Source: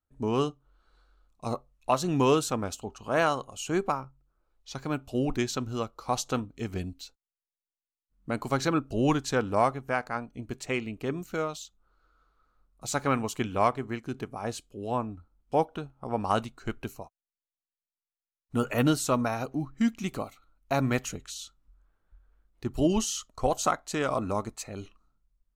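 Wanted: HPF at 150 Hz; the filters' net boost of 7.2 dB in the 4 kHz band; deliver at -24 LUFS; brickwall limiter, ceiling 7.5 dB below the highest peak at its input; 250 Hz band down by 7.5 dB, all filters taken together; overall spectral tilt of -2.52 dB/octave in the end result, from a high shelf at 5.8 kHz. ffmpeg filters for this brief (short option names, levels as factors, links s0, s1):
-af "highpass=150,equalizer=f=250:t=o:g=-9,equalizer=f=4000:t=o:g=6,highshelf=f=5800:g=8.5,volume=2.66,alimiter=limit=0.376:level=0:latency=1"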